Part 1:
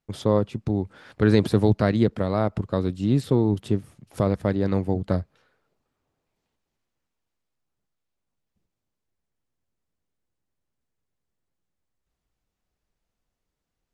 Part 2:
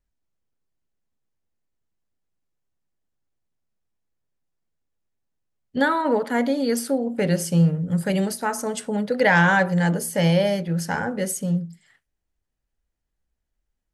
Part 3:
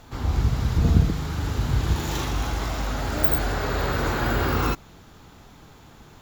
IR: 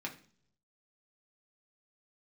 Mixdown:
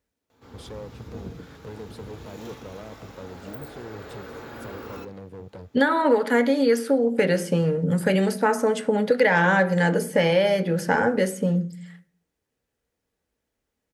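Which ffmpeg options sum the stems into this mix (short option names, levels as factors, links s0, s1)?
-filter_complex "[0:a]acompressor=threshold=0.0562:ratio=6,asoftclip=type=hard:threshold=0.0266,adelay=450,volume=0.501[s0];[1:a]volume=1.33,asplit=2[s1][s2];[s2]volume=0.596[s3];[2:a]adelay=300,volume=0.106,asplit=2[s4][s5];[s5]volume=0.668[s6];[3:a]atrim=start_sample=2205[s7];[s3][s6]amix=inputs=2:normalize=0[s8];[s8][s7]afir=irnorm=-1:irlink=0[s9];[s0][s1][s4][s9]amix=inputs=4:normalize=0,highpass=75,equalizer=f=470:t=o:w=0.34:g=10,acrossover=split=1100|2700[s10][s11][s12];[s10]acompressor=threshold=0.112:ratio=4[s13];[s11]acompressor=threshold=0.0631:ratio=4[s14];[s12]acompressor=threshold=0.0112:ratio=4[s15];[s13][s14][s15]amix=inputs=3:normalize=0"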